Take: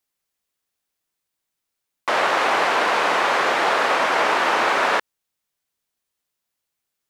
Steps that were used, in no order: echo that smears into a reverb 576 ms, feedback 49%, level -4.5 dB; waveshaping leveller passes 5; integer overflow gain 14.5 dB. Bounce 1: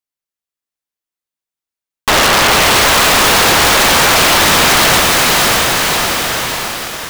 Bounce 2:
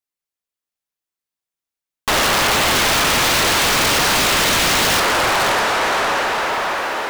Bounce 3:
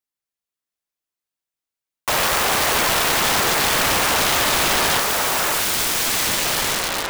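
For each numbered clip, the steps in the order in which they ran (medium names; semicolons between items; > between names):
integer overflow > echo that smears into a reverb > waveshaping leveller; echo that smears into a reverb > integer overflow > waveshaping leveller; echo that smears into a reverb > waveshaping leveller > integer overflow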